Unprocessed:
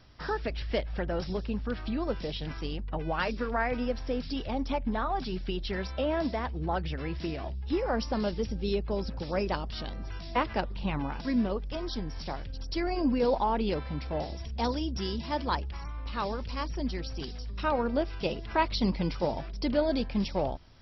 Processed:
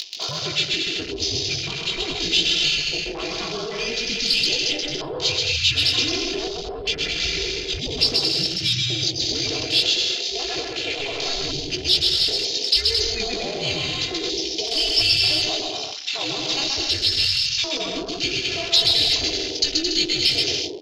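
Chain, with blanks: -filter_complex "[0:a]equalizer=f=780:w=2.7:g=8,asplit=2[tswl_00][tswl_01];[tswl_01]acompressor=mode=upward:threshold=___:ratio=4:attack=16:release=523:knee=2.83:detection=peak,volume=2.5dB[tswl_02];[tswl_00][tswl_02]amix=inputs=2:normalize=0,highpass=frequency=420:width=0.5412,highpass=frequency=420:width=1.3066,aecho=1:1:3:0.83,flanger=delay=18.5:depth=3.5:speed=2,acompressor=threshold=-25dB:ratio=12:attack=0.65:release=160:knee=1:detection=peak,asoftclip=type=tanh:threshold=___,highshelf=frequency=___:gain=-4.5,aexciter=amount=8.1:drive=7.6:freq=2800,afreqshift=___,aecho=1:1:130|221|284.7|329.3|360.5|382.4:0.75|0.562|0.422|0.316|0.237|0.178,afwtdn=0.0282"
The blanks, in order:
-39dB, -22dB, 3200, -280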